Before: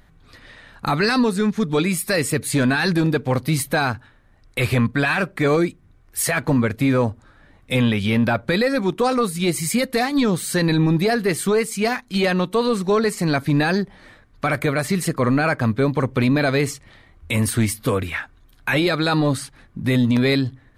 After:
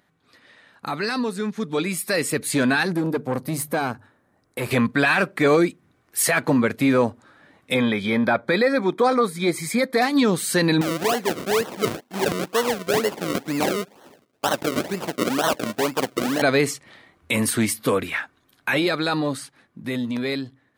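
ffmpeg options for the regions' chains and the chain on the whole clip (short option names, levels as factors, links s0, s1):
-filter_complex "[0:a]asettb=1/sr,asplit=3[s0][s1][s2];[s0]atrim=end=2.834[s3];[s1]atrim=start=2.83:end=4.71,asetpts=PTS-STARTPTS,afade=t=in:d=0.004:c=qsin,afade=t=out:st=1.876:d=0.004:c=qsin,equalizer=f=3100:w=0.63:g=-11,aeval=exprs='(tanh(6.31*val(0)+0.35)-tanh(0.35))/6.31':c=same,bandreject=f=50:t=h:w=6,bandreject=f=100:t=h:w=6,bandreject=f=150:t=h:w=6[s4];[s2]atrim=start=4.706[s5];[s3][s4]acrossfade=d=0.004:c1=hsin:c2=qsin[s6];[s6][s5]acrossfade=d=0.004:c1=qsin:c2=hsin,asettb=1/sr,asplit=3[s7][s8][s9];[s7]atrim=end=7.744[s10];[s8]atrim=start=7.74:end=10.02,asetpts=PTS-STARTPTS,afade=t=in:d=0.004:c=qsin,afade=t=out:st=2.276:d=0.004:c=qsin,asuperstop=centerf=2800:order=20:qfactor=5.4,bass=f=250:g=-3,treble=f=4000:g=-8[s11];[s9]atrim=start=10.016[s12];[s10][s11]acrossfade=d=0.004:c1=hsin:c2=qsin[s13];[s13][s12]acrossfade=d=0.004:c1=qsin:c2=hsin,asettb=1/sr,asplit=3[s14][s15][s16];[s14]atrim=end=10.814[s17];[s15]atrim=start=10.81:end=16.42,asetpts=PTS-STARTPTS,afade=t=in:d=0.004:c=qsin,afade=t=out:st=5.606:d=0.004:c=qsin,highpass=f=500:p=1,equalizer=f=5300:w=0.94:g=-10.5,acrusher=samples=36:mix=1:aa=0.000001:lfo=1:lforange=36:lforate=2.1[s18];[s16]atrim=start=16.416[s19];[s17][s18]acrossfade=d=0.004:c1=hsin:c2=qsin[s20];[s20][s19]acrossfade=d=0.004:c1=qsin:c2=hsin,dynaudnorm=f=260:g=17:m=3.76,highpass=200,volume=0.447"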